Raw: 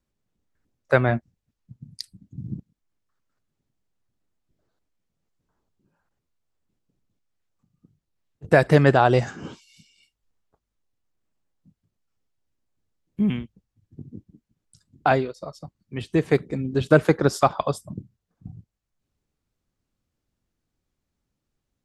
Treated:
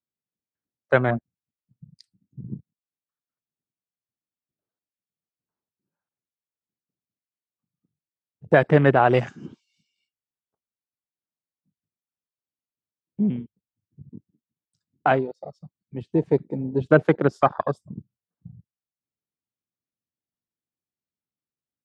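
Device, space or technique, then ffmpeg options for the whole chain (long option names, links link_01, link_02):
over-cleaned archive recording: -filter_complex "[0:a]asplit=3[link_01][link_02][link_03];[link_01]afade=type=out:start_time=9.05:duration=0.02[link_04];[link_02]highshelf=frequency=2600:gain=10,afade=type=in:start_time=9.05:duration=0.02,afade=type=out:start_time=9.45:duration=0.02[link_05];[link_03]afade=type=in:start_time=9.45:duration=0.02[link_06];[link_04][link_05][link_06]amix=inputs=3:normalize=0,highpass=120,lowpass=6600,afwtdn=0.0398"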